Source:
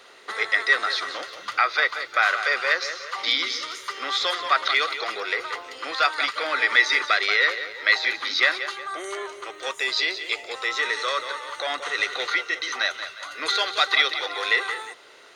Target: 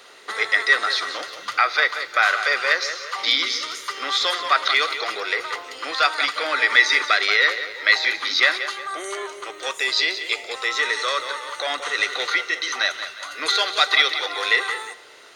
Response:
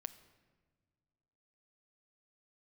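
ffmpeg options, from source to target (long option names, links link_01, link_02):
-filter_complex "[0:a]asplit=2[link_01][link_02];[1:a]atrim=start_sample=2205,highshelf=frequency=4700:gain=7.5[link_03];[link_02][link_03]afir=irnorm=-1:irlink=0,volume=7dB[link_04];[link_01][link_04]amix=inputs=2:normalize=0,volume=-6dB"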